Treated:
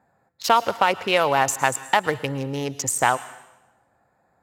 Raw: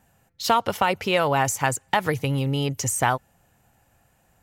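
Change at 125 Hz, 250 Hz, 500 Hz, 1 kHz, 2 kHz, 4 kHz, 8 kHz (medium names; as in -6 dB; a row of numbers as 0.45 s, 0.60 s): -6.5 dB, -2.5 dB, +1.5 dB, +2.5 dB, +2.5 dB, +1.5 dB, +1.5 dB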